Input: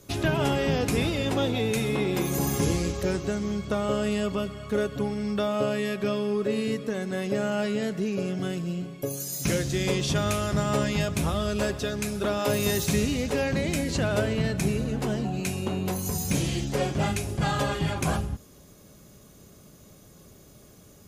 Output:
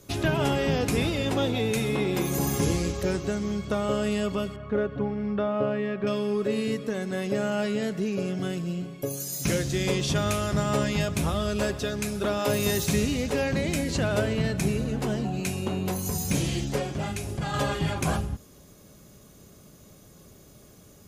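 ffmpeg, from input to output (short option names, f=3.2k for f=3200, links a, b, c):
-filter_complex "[0:a]asettb=1/sr,asplit=3[a][b][c];[a]atrim=end=4.564[d];[b]atrim=start=4.56:end=6.07,asetpts=PTS-STARTPTS,afade=t=in:d=0.004:c=qsin,afade=t=out:st=1.506:d=0.004:c=qsin,lowpass=1.9k[e];[c]atrim=start=6.066[f];[d][e]acrossfade=d=0.004:c1=hsin:c2=qsin[g];[g][f]acrossfade=d=0.004:c1=qsin:c2=hsin,asettb=1/sr,asplit=3[h][i][j];[h]atrim=end=16.784[k];[i]atrim=start=16.78:end=17.54,asetpts=PTS-STARTPTS,afade=t=in:d=0.004:c=qsin,afade=t=out:st=0.756:d=0.004:c=qsin,acompressor=threshold=-28dB:ratio=3[l];[j]atrim=start=17.536[m];[k][l]acrossfade=d=0.004:c1=hsin:c2=qsin[n];[n][m]acrossfade=d=0.004:c1=qsin:c2=hsin"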